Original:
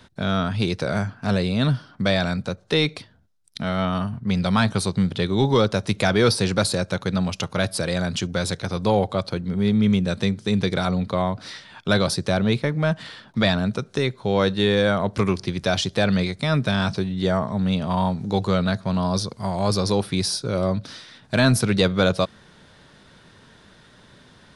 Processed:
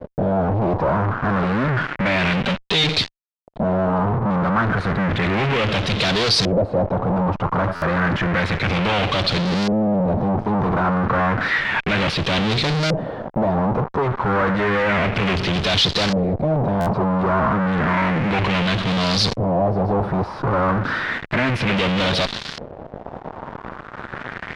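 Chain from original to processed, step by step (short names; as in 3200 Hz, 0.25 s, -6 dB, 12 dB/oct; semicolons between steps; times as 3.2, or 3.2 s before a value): 2.4–2.84 comb 5.1 ms, depth 54%; fuzz box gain 43 dB, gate -46 dBFS; tube stage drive 28 dB, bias 0.25; LFO low-pass saw up 0.31 Hz 530–4800 Hz; stuck buffer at 7.75/16.8, samples 512, times 5; gain +8.5 dB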